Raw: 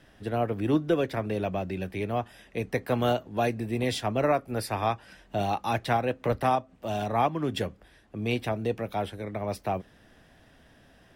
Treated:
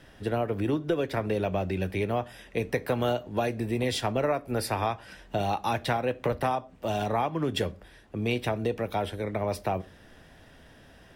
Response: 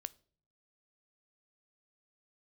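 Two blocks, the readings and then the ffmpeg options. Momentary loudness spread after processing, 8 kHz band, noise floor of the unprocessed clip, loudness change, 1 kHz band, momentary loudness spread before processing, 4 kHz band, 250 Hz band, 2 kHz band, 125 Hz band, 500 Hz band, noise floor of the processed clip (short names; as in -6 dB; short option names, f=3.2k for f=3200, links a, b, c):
5 LU, +2.0 dB, -58 dBFS, -0.5 dB, -1.5 dB, 8 LU, +1.5 dB, -1.0 dB, +0.5 dB, 0.0 dB, 0.0 dB, -54 dBFS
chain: -filter_complex "[0:a]acompressor=threshold=-27dB:ratio=6[a];[1:a]atrim=start_sample=2205,atrim=end_sample=6174[b];[a][b]afir=irnorm=-1:irlink=0,volume=7.5dB"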